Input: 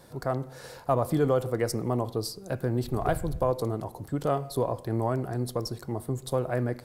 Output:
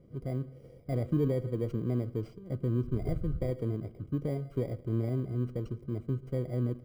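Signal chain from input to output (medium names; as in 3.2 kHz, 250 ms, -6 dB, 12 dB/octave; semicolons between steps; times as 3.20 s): bit-reversed sample order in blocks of 32 samples; boxcar filter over 50 samples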